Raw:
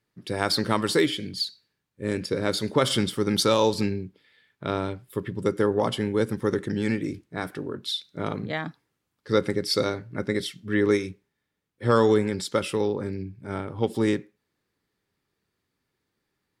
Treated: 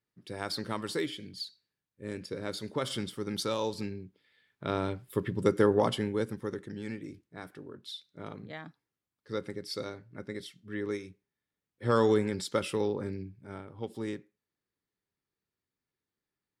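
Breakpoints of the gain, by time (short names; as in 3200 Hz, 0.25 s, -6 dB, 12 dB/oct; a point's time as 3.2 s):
3.94 s -11 dB
5.06 s -1 dB
5.75 s -1 dB
6.62 s -13 dB
11.1 s -13 dB
12.03 s -5 dB
13.11 s -5 dB
13.65 s -13 dB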